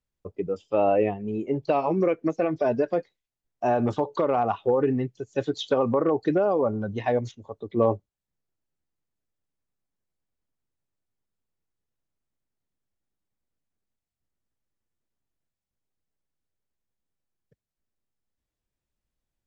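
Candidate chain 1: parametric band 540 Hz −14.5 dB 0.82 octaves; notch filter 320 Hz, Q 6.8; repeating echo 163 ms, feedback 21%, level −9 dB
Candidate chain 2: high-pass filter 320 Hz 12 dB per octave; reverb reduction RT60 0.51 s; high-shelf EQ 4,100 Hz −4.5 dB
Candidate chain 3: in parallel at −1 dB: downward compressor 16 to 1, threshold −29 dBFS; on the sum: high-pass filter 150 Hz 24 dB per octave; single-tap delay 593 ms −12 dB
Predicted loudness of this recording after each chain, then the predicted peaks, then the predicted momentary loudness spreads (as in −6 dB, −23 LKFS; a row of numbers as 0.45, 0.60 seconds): −31.5, −27.5, −23.0 LKFS; −15.0, −11.5, −7.5 dBFS; 9, 10, 13 LU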